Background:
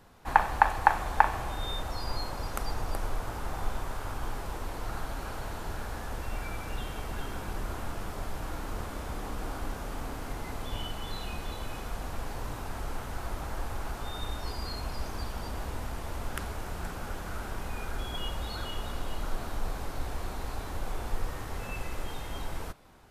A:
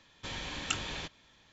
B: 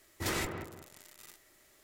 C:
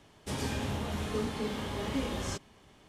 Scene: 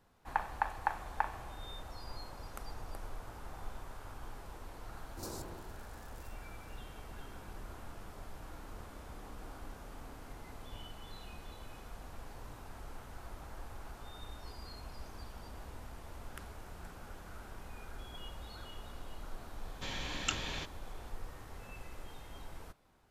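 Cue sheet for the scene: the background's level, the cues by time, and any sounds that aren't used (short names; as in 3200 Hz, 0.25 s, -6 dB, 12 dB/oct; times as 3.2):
background -12 dB
4.97 add B -9 dB + inverse Chebyshev band-stop 1500–3000 Hz
19.58 add A -1.5 dB
not used: C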